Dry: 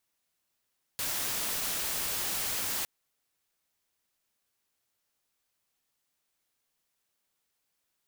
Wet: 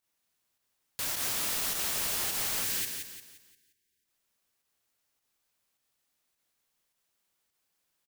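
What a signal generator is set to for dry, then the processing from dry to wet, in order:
noise white, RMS -32.5 dBFS 1.86 s
spectral gain 2.64–4.05, 480–1500 Hz -26 dB; pump 104 bpm, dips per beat 1, -9 dB, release 98 ms; on a send: feedback echo 0.175 s, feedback 40%, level -5.5 dB

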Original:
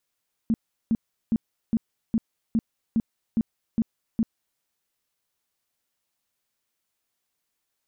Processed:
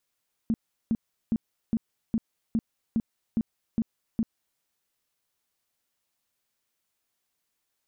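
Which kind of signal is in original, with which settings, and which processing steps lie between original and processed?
tone bursts 226 Hz, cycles 9, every 0.41 s, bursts 10, -18 dBFS
compressor, threshold -24 dBFS

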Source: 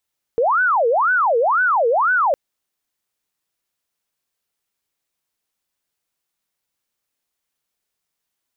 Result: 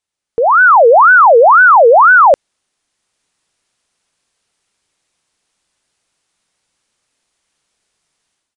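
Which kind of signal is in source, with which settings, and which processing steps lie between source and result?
siren wail 456–1510 Hz 2/s sine -13.5 dBFS 1.96 s
downsampling 22050 Hz; AGC gain up to 13.5 dB

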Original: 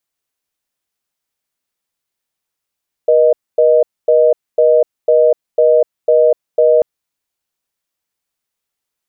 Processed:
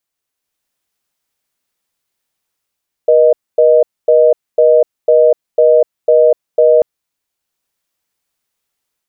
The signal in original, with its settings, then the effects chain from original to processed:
call progress tone reorder tone, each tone -9.5 dBFS 3.74 s
AGC gain up to 5 dB

